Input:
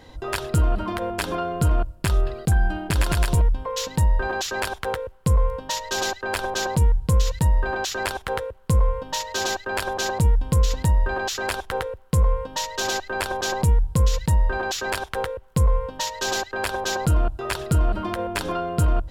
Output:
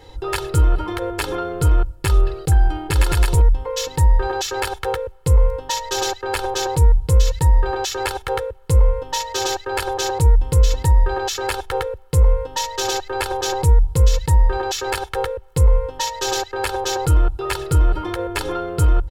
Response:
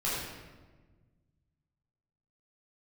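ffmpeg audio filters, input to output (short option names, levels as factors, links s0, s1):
-af "aecho=1:1:2.3:1"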